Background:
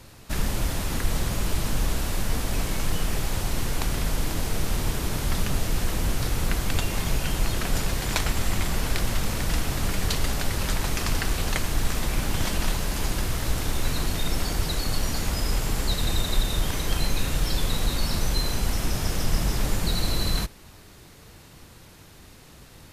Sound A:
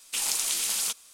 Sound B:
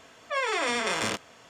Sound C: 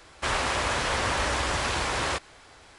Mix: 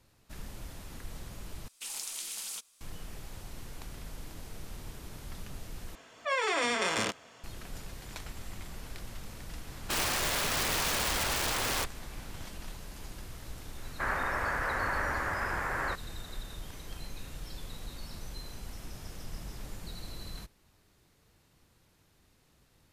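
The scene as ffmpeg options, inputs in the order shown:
ffmpeg -i bed.wav -i cue0.wav -i cue1.wav -i cue2.wav -filter_complex "[3:a]asplit=2[link_01][link_02];[0:a]volume=-18dB[link_03];[link_01]aeval=exprs='(mod(12.6*val(0)+1,2)-1)/12.6':channel_layout=same[link_04];[link_02]highshelf=frequency=2500:width_type=q:width=3:gain=-13.5[link_05];[link_03]asplit=3[link_06][link_07][link_08];[link_06]atrim=end=1.684[link_09];[1:a]atrim=end=1.13,asetpts=PTS-STARTPTS,volume=-11.5dB[link_10];[link_07]atrim=start=2.806:end=5.954[link_11];[2:a]atrim=end=1.49,asetpts=PTS-STARTPTS,volume=-2dB[link_12];[link_08]atrim=start=7.436[link_13];[link_04]atrim=end=2.78,asetpts=PTS-STARTPTS,volume=-3dB,afade=type=in:duration=0.004:curve=hsin,afade=type=out:start_time=2.776:duration=0.004:curve=hsin,adelay=9670[link_14];[link_05]atrim=end=2.78,asetpts=PTS-STARTPTS,volume=-8dB,afade=type=in:duration=0.004:curve=hsin,afade=type=out:start_time=2.776:duration=0.004:curve=hsin,adelay=13770[link_15];[link_09][link_10]acrossfade=duration=0.004:curve1=hsin:curve2=hsin[link_16];[link_16][link_11]acrossfade=duration=0.004:curve1=hsin:curve2=hsin[link_17];[link_17][link_12]acrossfade=duration=0.004:curve1=hsin:curve2=hsin[link_18];[link_18][link_13]acrossfade=duration=0.004:curve1=hsin:curve2=hsin[link_19];[link_19][link_14][link_15]amix=inputs=3:normalize=0" out.wav

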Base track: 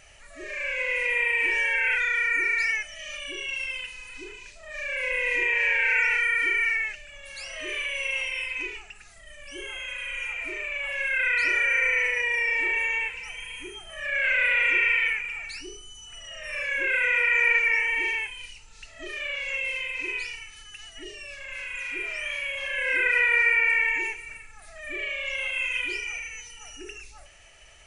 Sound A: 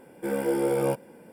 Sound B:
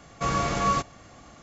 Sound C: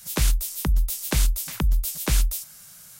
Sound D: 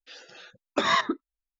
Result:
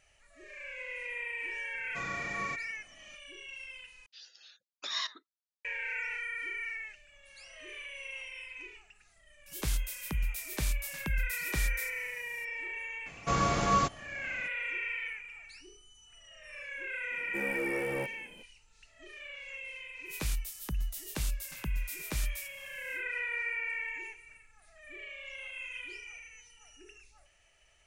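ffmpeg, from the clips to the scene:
ffmpeg -i bed.wav -i cue0.wav -i cue1.wav -i cue2.wav -i cue3.wav -filter_complex "[2:a]asplit=2[link_01][link_02];[3:a]asplit=2[link_03][link_04];[0:a]volume=-14dB[link_05];[link_01]lowshelf=frequency=69:gain=-9.5[link_06];[4:a]bandpass=frequency=4800:width_type=q:width=1.9:csg=0[link_07];[1:a]asoftclip=type=tanh:threshold=-22dB[link_08];[link_05]asplit=2[link_09][link_10];[link_09]atrim=end=4.064[link_11];[link_07]atrim=end=1.59,asetpts=PTS-STARTPTS,volume=-1.5dB[link_12];[link_10]atrim=start=5.646[link_13];[link_06]atrim=end=1.42,asetpts=PTS-STARTPTS,volume=-15dB,afade=type=in:duration=0.004:curve=hsin,afade=type=out:start_time=1.416:duration=0.004:curve=hsin,adelay=1740[link_14];[link_03]atrim=end=2.99,asetpts=PTS-STARTPTS,volume=-11dB,afade=type=in:duration=0.004:curve=hsin,afade=type=out:start_time=2.986:duration=0.004:curve=hsin,adelay=417186S[link_15];[link_02]atrim=end=1.42,asetpts=PTS-STARTPTS,volume=-2.5dB,afade=type=in:duration=0.004:curve=hsin,afade=type=out:start_time=1.416:duration=0.004:curve=hsin,adelay=13060[link_16];[link_08]atrim=end=1.32,asetpts=PTS-STARTPTS,volume=-7.5dB,afade=type=in:duration=0.004:curve=hsin,afade=type=out:start_time=1.316:duration=0.004:curve=hsin,adelay=17110[link_17];[link_04]atrim=end=2.99,asetpts=PTS-STARTPTS,volume=-12.5dB,afade=type=in:duration=0.1,afade=type=out:start_time=2.89:duration=0.1,adelay=883764S[link_18];[link_11][link_12]acrossfade=duration=0.004:curve1=hsin:curve2=hsin[link_19];[link_19][link_13]acrossfade=duration=0.004:curve1=hsin:curve2=hsin[link_20];[link_20][link_14][link_15][link_16][link_17][link_18]amix=inputs=6:normalize=0" out.wav

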